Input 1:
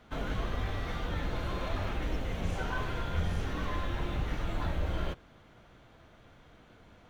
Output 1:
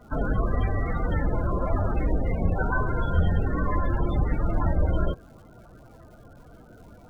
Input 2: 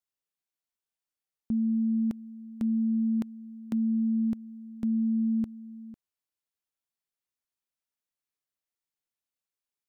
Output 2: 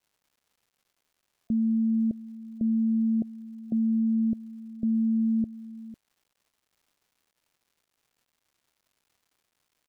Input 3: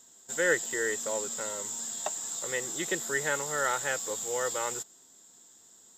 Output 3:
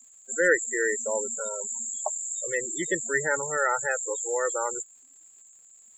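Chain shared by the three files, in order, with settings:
loudest bins only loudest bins 32; crackle 370/s -61 dBFS; match loudness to -27 LUFS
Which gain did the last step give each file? +9.5, +2.0, +5.0 dB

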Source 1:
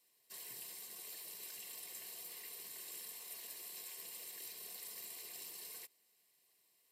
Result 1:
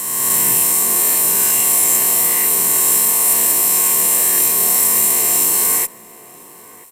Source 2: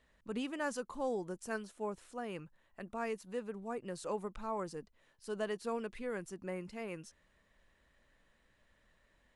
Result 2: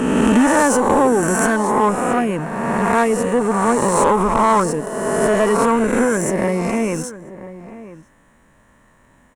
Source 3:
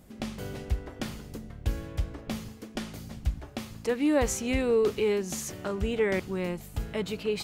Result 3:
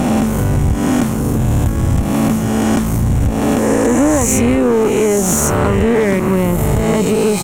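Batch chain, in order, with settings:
spectral swells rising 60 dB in 1.88 s; ten-band EQ 125 Hz +7 dB, 250 Hz +9 dB, 1000 Hz +9 dB, 4000 Hz -9 dB, 8000 Hz +7 dB; compressor 4:1, threshold -23 dBFS; added harmonics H 6 -21 dB, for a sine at -13 dBFS; high shelf 7600 Hz +5 dB; sample leveller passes 1; notch 4800 Hz, Q 11; outdoor echo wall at 170 m, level -15 dB; normalise peaks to -3 dBFS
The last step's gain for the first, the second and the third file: +22.5, +12.0, +9.0 dB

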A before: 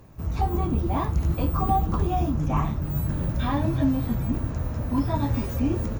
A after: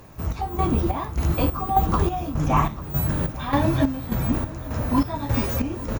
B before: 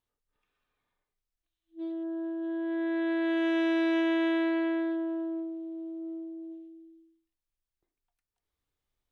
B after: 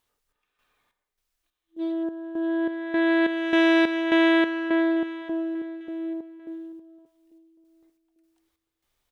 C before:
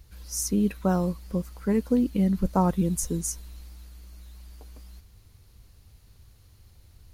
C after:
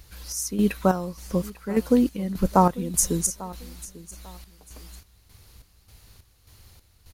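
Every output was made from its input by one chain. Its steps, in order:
chopper 1.7 Hz, depth 65%, duty 55%; low shelf 390 Hz -8 dB; feedback echo 0.845 s, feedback 28%, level -19 dB; match loudness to -24 LUFS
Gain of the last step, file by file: +9.5, +12.0, +9.0 dB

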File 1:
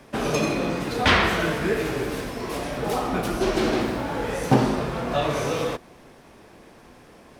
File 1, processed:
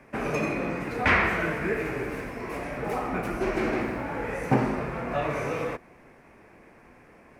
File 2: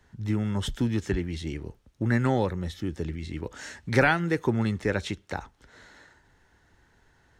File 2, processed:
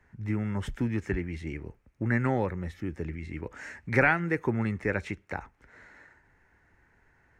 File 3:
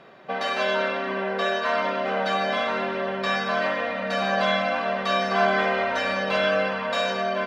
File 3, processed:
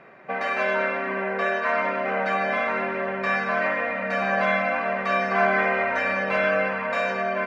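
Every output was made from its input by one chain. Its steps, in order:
resonant high shelf 2800 Hz -6.5 dB, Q 3; normalise peaks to -9 dBFS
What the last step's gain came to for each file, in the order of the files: -4.5, -3.0, -0.5 dB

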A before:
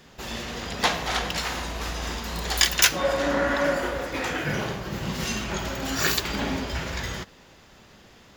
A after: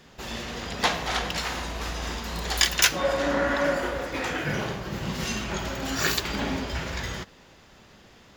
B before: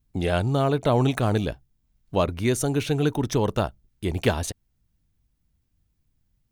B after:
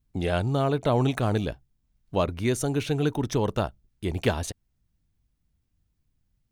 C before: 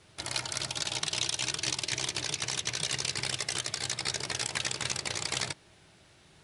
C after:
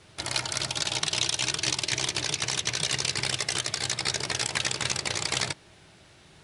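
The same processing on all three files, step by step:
high shelf 10000 Hz -4 dB; match loudness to -27 LUFS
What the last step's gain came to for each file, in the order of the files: -1.0, -2.0, +5.0 dB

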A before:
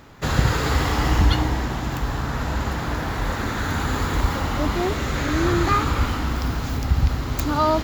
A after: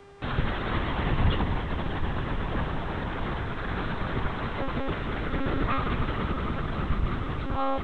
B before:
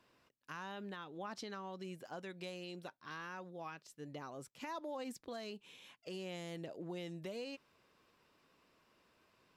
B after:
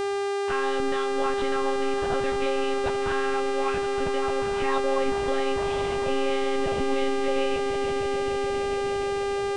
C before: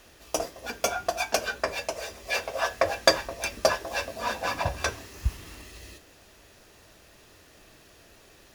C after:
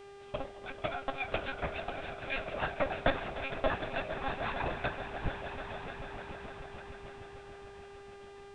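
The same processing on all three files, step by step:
swelling echo 0.149 s, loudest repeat 5, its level -14 dB; monotone LPC vocoder at 8 kHz 270 Hz; buzz 400 Hz, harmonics 24, -44 dBFS -8 dB/oct; normalise peaks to -12 dBFS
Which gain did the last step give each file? -7.5, +17.0, -7.0 dB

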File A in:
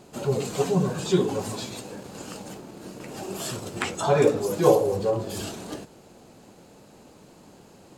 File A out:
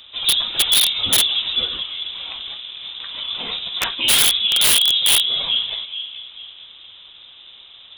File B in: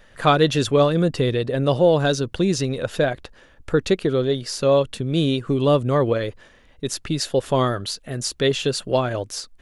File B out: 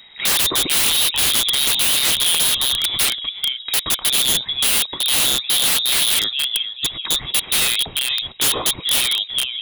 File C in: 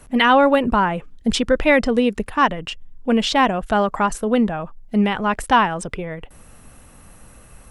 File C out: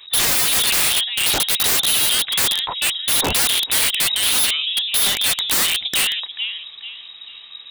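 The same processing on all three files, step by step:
band-limited delay 0.437 s, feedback 36%, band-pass 650 Hz, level -5.5 dB; inverted band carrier 3800 Hz; wrapped overs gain 15.5 dB; match loudness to -16 LUFS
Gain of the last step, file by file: +7.0, +4.0, +3.5 dB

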